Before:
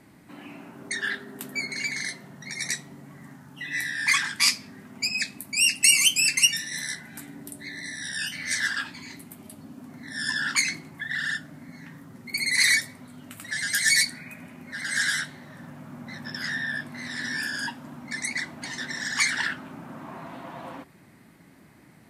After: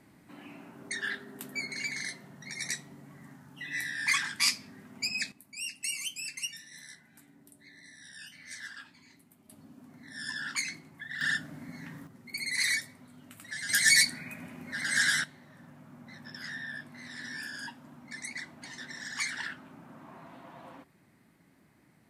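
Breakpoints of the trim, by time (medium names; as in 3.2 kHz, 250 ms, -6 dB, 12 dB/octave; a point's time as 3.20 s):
-5.5 dB
from 5.32 s -17 dB
from 9.49 s -9.5 dB
from 11.21 s -0.5 dB
from 12.07 s -8.5 dB
from 13.69 s -1 dB
from 15.24 s -10 dB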